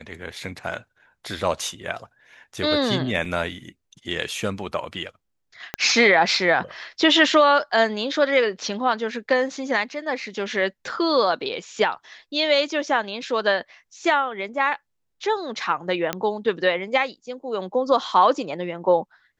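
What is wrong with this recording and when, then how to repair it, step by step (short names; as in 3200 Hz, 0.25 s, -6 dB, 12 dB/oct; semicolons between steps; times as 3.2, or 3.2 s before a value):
3.25 gap 3.5 ms
5.74 pop -9 dBFS
16.13 pop -8 dBFS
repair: de-click; interpolate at 3.25, 3.5 ms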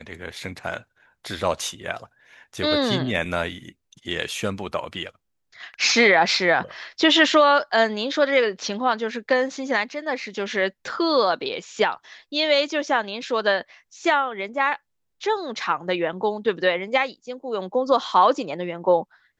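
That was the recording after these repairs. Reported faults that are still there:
5.74 pop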